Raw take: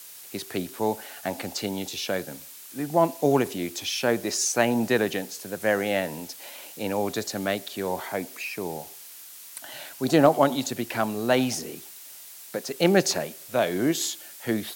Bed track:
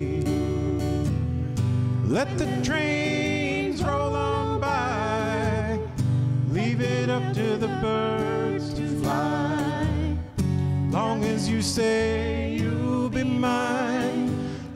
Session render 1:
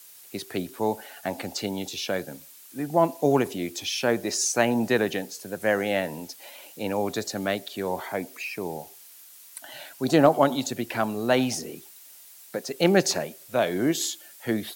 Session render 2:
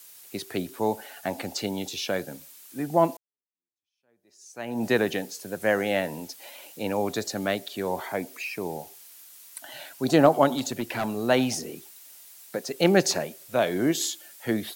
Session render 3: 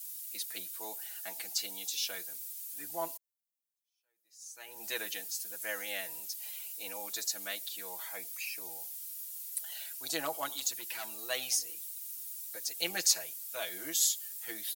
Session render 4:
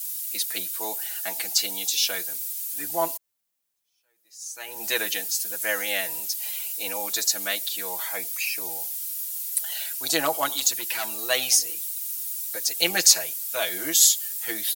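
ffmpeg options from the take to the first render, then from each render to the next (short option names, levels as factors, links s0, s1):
-af "afftdn=nr=6:nf=-45"
-filter_complex "[0:a]asettb=1/sr,asplit=3[s0][s1][s2];[s0]atrim=end=10.514[s3];[s1]atrim=start=10.51:end=11.16,asetpts=PTS-STARTPTS,afade=t=in:d=0.004:c=qsin,afade=t=out:st=0.646:d=0.004:c=qsin,volume=13.3,asoftclip=hard,volume=0.075[s4];[s2]atrim=start=11.156[s5];[s3][s4]acrossfade=d=0.004:c1=hsin:c2=qsin[s6];[s6][s5]acrossfade=d=0.004:c1=qsin:c2=hsin,asplit=2[s7][s8];[s7]atrim=end=3.17,asetpts=PTS-STARTPTS,afade=t=out:st=3.166:d=0.004:c=hsin[s9];[s8]atrim=start=3.17,asetpts=PTS-STARTPTS,afade=t=in:d=1.69:c=exp[s10];[s9][s10]concat=n=2:v=0:a=1"
-af "aderivative,aecho=1:1:6.2:0.81"
-af "volume=3.76,alimiter=limit=0.794:level=0:latency=1"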